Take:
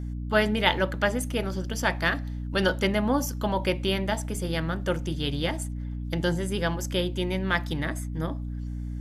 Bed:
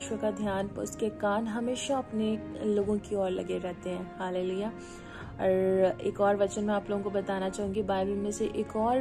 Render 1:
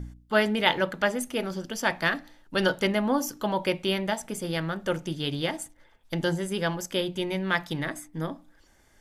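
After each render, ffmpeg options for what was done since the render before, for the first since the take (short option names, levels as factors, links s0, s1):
-af "bandreject=f=60:t=h:w=4,bandreject=f=120:t=h:w=4,bandreject=f=180:t=h:w=4,bandreject=f=240:t=h:w=4,bandreject=f=300:t=h:w=4"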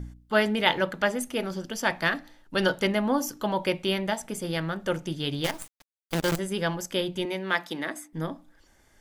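-filter_complex "[0:a]asettb=1/sr,asplit=3[s0][s1][s2];[s0]atrim=end=5.444[s3];[s1]atrim=start=5.44:end=6.39,asetpts=PTS-STARTPTS,afade=t=in:d=0.004:c=qsin,afade=t=out:st=0.946:d=0.004:c=qsin,acrusher=bits=5:dc=4:mix=0:aa=0.000001[s4];[s2]atrim=start=6.386[s5];[s3][s4]acrossfade=d=0.004:c1=hsin:c2=qsin[s6];[s6][s5]acrossfade=d=0.004:c1=qsin:c2=hsin,asettb=1/sr,asplit=3[s7][s8][s9];[s7]atrim=end=7.254[s10];[s8]atrim=start=7.25:end=8.13,asetpts=PTS-STARTPTS,afade=t=in:d=0.004:c=qsin,afade=t=out:st=0.876:d=0.004:c=qsin,highpass=f=220:w=0.5412,highpass=f=220:w=1.3066[s11];[s9]atrim=start=8.126[s12];[s10][s11]acrossfade=d=0.004:c1=hsin:c2=qsin[s13];[s13][s12]acrossfade=d=0.004:c1=qsin:c2=hsin"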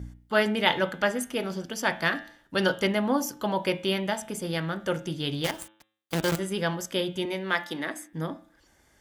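-af "highpass=44,bandreject=f=108.5:t=h:w=4,bandreject=f=217:t=h:w=4,bandreject=f=325.5:t=h:w=4,bandreject=f=434:t=h:w=4,bandreject=f=542.5:t=h:w=4,bandreject=f=651:t=h:w=4,bandreject=f=759.5:t=h:w=4,bandreject=f=868:t=h:w=4,bandreject=f=976.5:t=h:w=4,bandreject=f=1085:t=h:w=4,bandreject=f=1193.5:t=h:w=4,bandreject=f=1302:t=h:w=4,bandreject=f=1410.5:t=h:w=4,bandreject=f=1519:t=h:w=4,bandreject=f=1627.5:t=h:w=4,bandreject=f=1736:t=h:w=4,bandreject=f=1844.5:t=h:w=4,bandreject=f=1953:t=h:w=4,bandreject=f=2061.5:t=h:w=4,bandreject=f=2170:t=h:w=4,bandreject=f=2278.5:t=h:w=4,bandreject=f=2387:t=h:w=4,bandreject=f=2495.5:t=h:w=4,bandreject=f=2604:t=h:w=4,bandreject=f=2712.5:t=h:w=4,bandreject=f=2821:t=h:w=4,bandreject=f=2929.5:t=h:w=4,bandreject=f=3038:t=h:w=4,bandreject=f=3146.5:t=h:w=4,bandreject=f=3255:t=h:w=4,bandreject=f=3363.5:t=h:w=4,bandreject=f=3472:t=h:w=4,bandreject=f=3580.5:t=h:w=4,bandreject=f=3689:t=h:w=4,bandreject=f=3797.5:t=h:w=4,bandreject=f=3906:t=h:w=4"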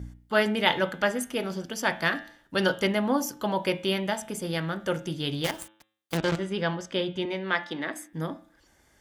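-filter_complex "[0:a]asettb=1/sr,asplit=3[s0][s1][s2];[s0]atrim=end=6.174[s3];[s1]atrim=start=6.17:end=7.93,asetpts=PTS-STARTPTS,afade=t=in:d=0.004:c=qsin,afade=t=out:st=1.756:d=0.004:c=qsin,lowpass=4600[s4];[s2]atrim=start=7.926[s5];[s3][s4]acrossfade=d=0.004:c1=hsin:c2=qsin[s6];[s6][s5]acrossfade=d=0.004:c1=qsin:c2=hsin"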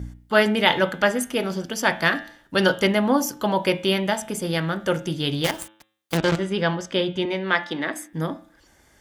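-af "volume=1.88,alimiter=limit=0.794:level=0:latency=1"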